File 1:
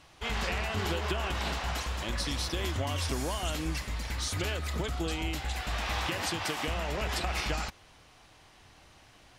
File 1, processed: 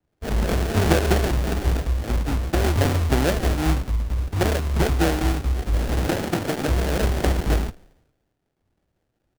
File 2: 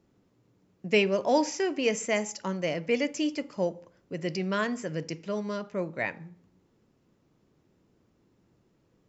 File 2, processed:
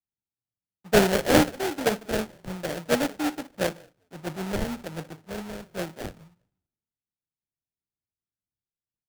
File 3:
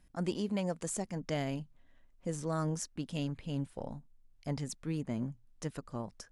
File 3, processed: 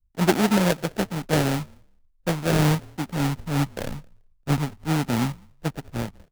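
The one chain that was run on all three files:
tape spacing loss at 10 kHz 35 dB; frequency-shifting echo 0.196 s, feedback 34%, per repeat -43 Hz, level -22 dB; wow and flutter 36 cents; sample-rate reducer 1100 Hz, jitter 20%; three-band expander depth 100%; normalise peaks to -3 dBFS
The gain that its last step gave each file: +13.5, +0.5, +13.5 dB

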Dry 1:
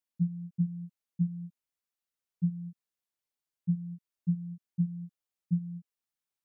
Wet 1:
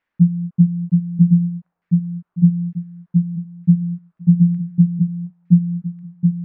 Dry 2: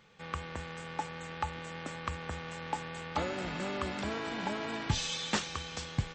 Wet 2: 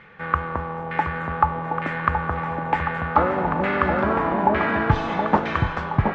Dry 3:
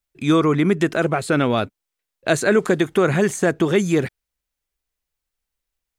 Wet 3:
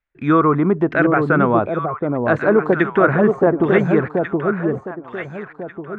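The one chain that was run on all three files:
LFO low-pass saw down 1.1 Hz 830–2000 Hz; on a send: echo with dull and thin repeats by turns 0.722 s, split 840 Hz, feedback 54%, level -3 dB; on the sum: normalise peaks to -2 dBFS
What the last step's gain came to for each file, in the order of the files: +16.0, +11.5, +0.5 dB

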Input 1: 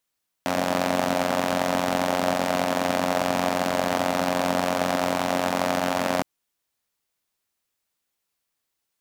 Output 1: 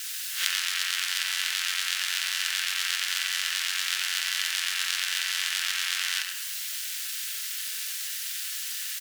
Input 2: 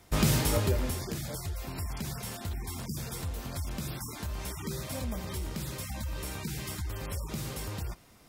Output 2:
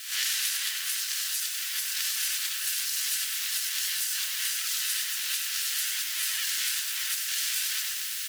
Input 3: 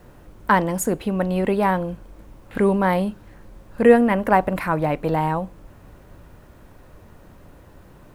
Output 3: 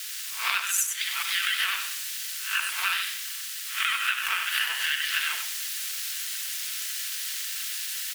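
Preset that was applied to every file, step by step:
spectral swells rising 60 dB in 0.36 s; in parallel at -7.5 dB: requantised 6-bit, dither triangular; on the sum: vocal rider within 4 dB 2 s; vibrato 13 Hz 88 cents; elliptic high-pass 2200 Hz, stop band 60 dB; high shelf 4100 Hz -4 dB; shoebox room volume 2200 m³, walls furnished, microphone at 1.4 m; compressor 12:1, threshold -35 dBFS; on a send: echo 97 ms -6.5 dB; on the sum: ring modulator 570 Hz; match loudness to -27 LUFS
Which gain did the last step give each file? +15.0, +13.0, +15.0 dB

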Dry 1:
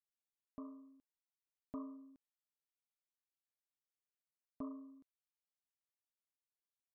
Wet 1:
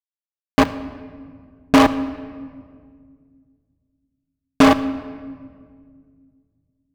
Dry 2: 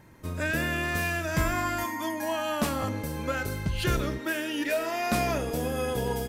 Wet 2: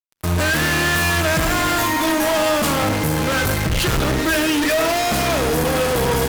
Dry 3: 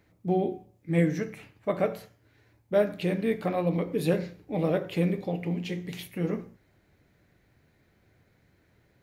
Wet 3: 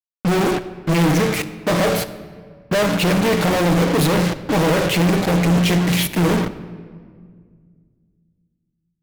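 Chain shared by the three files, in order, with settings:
in parallel at +1.5 dB: level quantiser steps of 16 dB; on the sum: short-mantissa float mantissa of 6-bit; added harmonics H 2 -14 dB, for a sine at -9 dBFS; fuzz box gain 47 dB, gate -41 dBFS; shoebox room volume 3100 m³, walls mixed, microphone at 0.59 m; match loudness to -18 LUFS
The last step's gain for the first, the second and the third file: +8.5, -4.5, -2.5 dB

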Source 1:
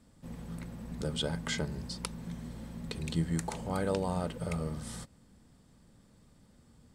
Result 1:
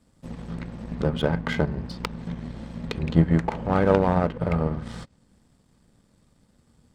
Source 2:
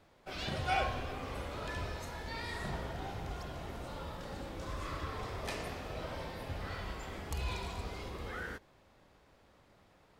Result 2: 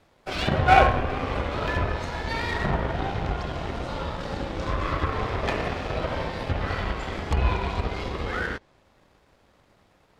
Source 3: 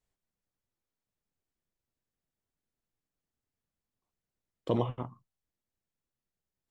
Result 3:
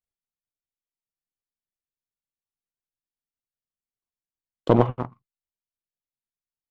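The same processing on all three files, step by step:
treble ducked by the level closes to 2000 Hz, closed at -34 dBFS; power-law curve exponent 1.4; normalise peaks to -1.5 dBFS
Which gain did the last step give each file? +15.5, +19.5, +14.0 dB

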